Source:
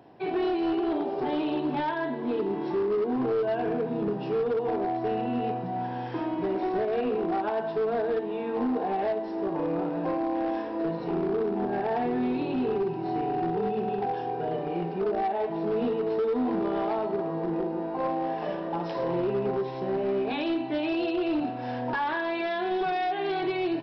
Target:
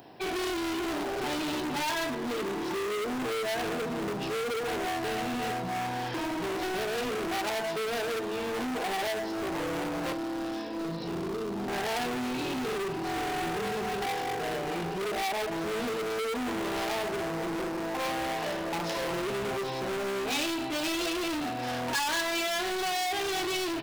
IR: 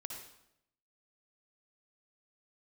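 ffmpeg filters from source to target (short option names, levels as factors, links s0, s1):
-filter_complex "[0:a]asettb=1/sr,asplit=3[s0][s1][s2];[s0]atrim=end=10.124[s3];[s1]atrim=start=10.12:end=11.68,asetpts=PTS-STARTPTS,afade=t=in:d=0.004:c=qsin,afade=t=out:st=1.556:d=0.004:c=qsin,acrossover=split=330|3000[s4][s5][s6];[s5]acompressor=threshold=0.00631:ratio=2.5[s7];[s4][s7][s6]amix=inputs=3:normalize=0[s8];[s2]atrim=start=11.676[s9];[s3][s8]acrossfade=d=0.004:c1=hsin:c2=qsin[s10];[s10][s9]acrossfade=d=0.004:c1=qsin:c2=hsin,volume=42.2,asoftclip=hard,volume=0.0237,crystalizer=i=5.5:c=0,volume=1.12"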